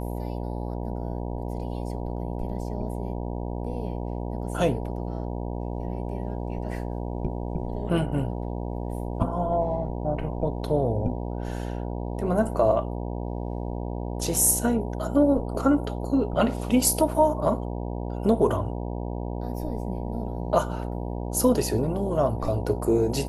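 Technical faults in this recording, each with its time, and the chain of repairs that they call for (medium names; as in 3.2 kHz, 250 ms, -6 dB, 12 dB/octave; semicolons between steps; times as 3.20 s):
buzz 60 Hz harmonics 16 -31 dBFS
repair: de-hum 60 Hz, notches 16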